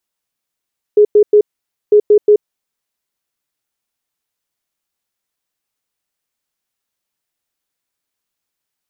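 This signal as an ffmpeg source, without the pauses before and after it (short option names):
-f lavfi -i "aevalsrc='0.631*sin(2*PI*418*t)*clip(min(mod(mod(t,0.95),0.18),0.08-mod(mod(t,0.95),0.18))/0.005,0,1)*lt(mod(t,0.95),0.54)':d=1.9:s=44100"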